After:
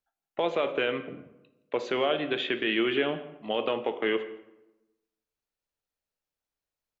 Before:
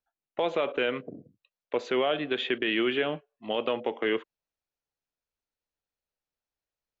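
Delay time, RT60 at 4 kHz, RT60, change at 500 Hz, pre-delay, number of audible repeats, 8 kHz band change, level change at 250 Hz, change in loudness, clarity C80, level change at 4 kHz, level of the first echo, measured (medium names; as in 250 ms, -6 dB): 169 ms, 0.55 s, 0.95 s, 0.0 dB, 5 ms, 1, no reading, +0.5 dB, +0.5 dB, 14.0 dB, +0.5 dB, -21.5 dB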